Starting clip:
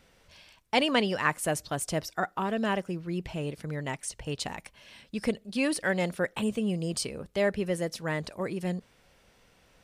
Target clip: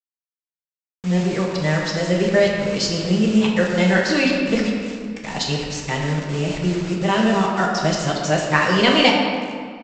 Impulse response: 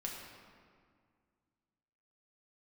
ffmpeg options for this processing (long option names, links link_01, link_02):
-filter_complex "[0:a]areverse,adynamicequalizer=threshold=0.00398:dfrequency=4200:dqfactor=1.1:tfrequency=4200:tqfactor=1.1:attack=5:release=100:ratio=0.375:range=2.5:mode=boostabove:tftype=bell,acontrast=76,aresample=16000,acrusher=bits=5:mix=0:aa=0.000001,aresample=44100[link_01];[1:a]atrim=start_sample=2205[link_02];[link_01][link_02]afir=irnorm=-1:irlink=0,volume=3.5dB"